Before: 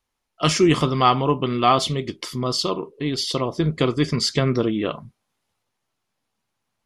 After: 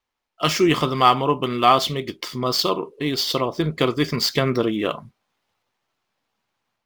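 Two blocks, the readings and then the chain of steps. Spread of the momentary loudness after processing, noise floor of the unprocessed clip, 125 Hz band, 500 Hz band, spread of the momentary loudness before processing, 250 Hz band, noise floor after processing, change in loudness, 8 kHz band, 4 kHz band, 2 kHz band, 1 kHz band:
9 LU, -78 dBFS, -3.5 dB, +0.5 dB, 9 LU, -1.0 dB, -82 dBFS, +0.5 dB, -1.5 dB, +1.5 dB, +2.5 dB, +2.0 dB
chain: median filter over 5 samples; AGC gain up to 5 dB; low shelf 290 Hz -8 dB

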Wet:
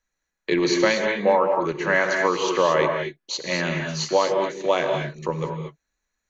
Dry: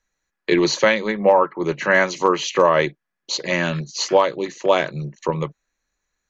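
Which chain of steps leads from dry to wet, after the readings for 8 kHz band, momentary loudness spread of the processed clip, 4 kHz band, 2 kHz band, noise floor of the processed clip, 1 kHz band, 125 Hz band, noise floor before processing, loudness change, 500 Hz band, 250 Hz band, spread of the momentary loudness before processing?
n/a, 10 LU, -2.5 dB, -2.5 dB, -81 dBFS, -3.0 dB, -2.5 dB, -81 dBFS, -3.0 dB, -2.5 dB, -2.5 dB, 11 LU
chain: non-linear reverb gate 0.26 s rising, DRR 3 dB; gain -4.5 dB

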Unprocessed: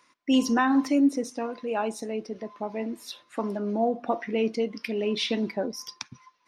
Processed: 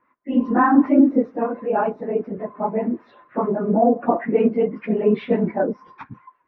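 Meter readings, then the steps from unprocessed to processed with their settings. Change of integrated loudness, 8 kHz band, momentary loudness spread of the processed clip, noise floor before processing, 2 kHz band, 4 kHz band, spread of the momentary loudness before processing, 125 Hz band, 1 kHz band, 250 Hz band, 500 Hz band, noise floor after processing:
+7.0 dB, under -35 dB, 11 LU, -65 dBFS, +2.5 dB, under -15 dB, 15 LU, n/a, +8.5 dB, +7.0 dB, +8.5 dB, -64 dBFS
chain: phase scrambler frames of 50 ms; LPF 1700 Hz 24 dB/oct; harmonic tremolo 5.1 Hz, depth 50%, crossover 650 Hz; AGC gain up to 8.5 dB; gain +2.5 dB

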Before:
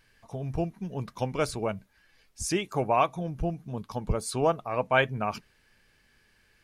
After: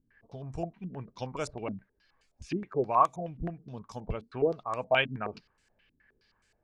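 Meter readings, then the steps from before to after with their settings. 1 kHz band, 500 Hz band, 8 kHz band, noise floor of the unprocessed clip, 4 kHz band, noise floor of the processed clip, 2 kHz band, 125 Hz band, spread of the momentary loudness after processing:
-1.5 dB, -3.0 dB, under -10 dB, -66 dBFS, -1.5 dB, -74 dBFS, -3.5 dB, -6.5 dB, 17 LU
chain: stepped low-pass 9.5 Hz 260–7500 Hz; gain -7.5 dB

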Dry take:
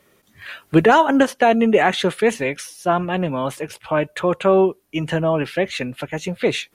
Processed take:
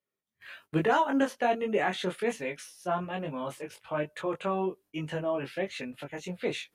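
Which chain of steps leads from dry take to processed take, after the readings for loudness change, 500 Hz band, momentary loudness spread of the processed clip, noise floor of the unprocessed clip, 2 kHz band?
-12.5 dB, -12.5 dB, 13 LU, -60 dBFS, -12.0 dB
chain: gate -43 dBFS, range -21 dB; low shelf 83 Hz -6.5 dB; chorus 1.2 Hz, delay 19.5 ms, depth 2.6 ms; gain -9 dB

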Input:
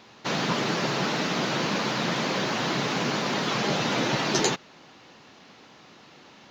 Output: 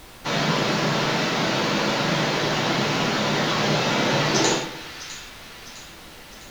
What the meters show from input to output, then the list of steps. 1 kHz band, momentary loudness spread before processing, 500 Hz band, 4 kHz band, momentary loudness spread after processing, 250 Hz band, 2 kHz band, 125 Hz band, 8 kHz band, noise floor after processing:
+4.0 dB, 2 LU, +4.5 dB, +4.5 dB, 19 LU, +3.5 dB, +4.5 dB, +5.5 dB, +4.0 dB, -43 dBFS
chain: split-band echo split 1300 Hz, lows 0.114 s, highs 0.656 s, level -13.5 dB; non-linear reverb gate 0.2 s falling, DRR -2 dB; added noise pink -46 dBFS

